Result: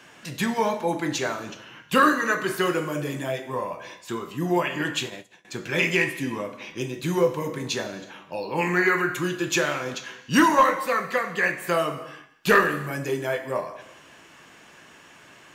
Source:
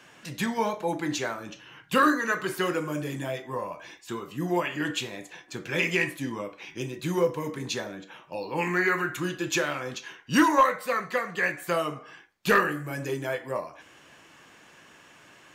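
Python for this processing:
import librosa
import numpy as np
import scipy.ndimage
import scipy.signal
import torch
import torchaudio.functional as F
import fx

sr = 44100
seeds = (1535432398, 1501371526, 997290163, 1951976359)

y = fx.rev_gated(x, sr, seeds[0], gate_ms=400, shape='falling', drr_db=10.0)
y = fx.upward_expand(y, sr, threshold_db=-49.0, expansion=2.5, at=(5.05, 5.45))
y = F.gain(torch.from_numpy(y), 3.0).numpy()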